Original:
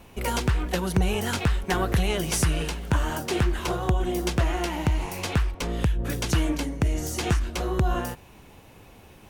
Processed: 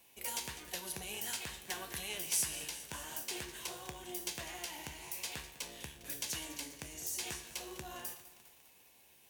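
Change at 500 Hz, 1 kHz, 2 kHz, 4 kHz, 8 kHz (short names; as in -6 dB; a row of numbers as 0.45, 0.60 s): -20.5, -17.5, -13.0, -8.5, -4.0 dB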